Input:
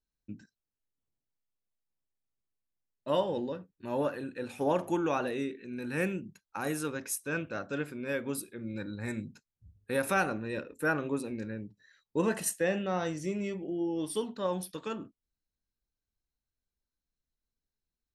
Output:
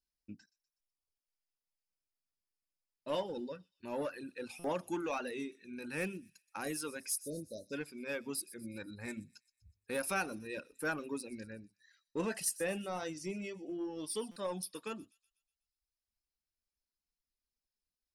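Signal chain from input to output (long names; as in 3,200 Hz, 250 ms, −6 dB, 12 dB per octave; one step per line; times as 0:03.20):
thirty-one-band graphic EQ 125 Hz −10 dB, 2,500 Hz +5 dB, 5,000 Hz +12 dB, 10,000 Hz +8 dB
in parallel at −11 dB: wave folding −29.5 dBFS
on the sum: reverb reduction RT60 0.92 s
time-frequency box erased 0:07.13–0:07.73, 660–3,600 Hz
on a send: delay with a high-pass on its return 123 ms, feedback 50%, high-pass 5,000 Hz, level −14.5 dB
on the sum: buffer that repeats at 0:04.59/0:14.31, samples 256, times 8
level −7 dB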